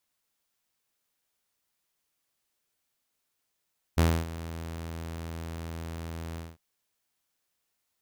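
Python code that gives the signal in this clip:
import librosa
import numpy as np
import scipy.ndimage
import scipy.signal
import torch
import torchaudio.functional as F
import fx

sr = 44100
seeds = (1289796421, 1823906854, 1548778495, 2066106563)

y = fx.adsr_tone(sr, wave='saw', hz=82.5, attack_ms=17.0, decay_ms=267.0, sustain_db=-17.0, held_s=2.4, release_ms=201.0, level_db=-16.0)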